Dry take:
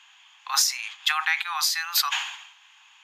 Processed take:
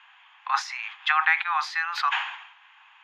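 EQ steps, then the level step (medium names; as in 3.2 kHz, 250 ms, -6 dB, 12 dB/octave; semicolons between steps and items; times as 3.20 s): Butterworth band-pass 1 kHz, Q 0.59; +5.0 dB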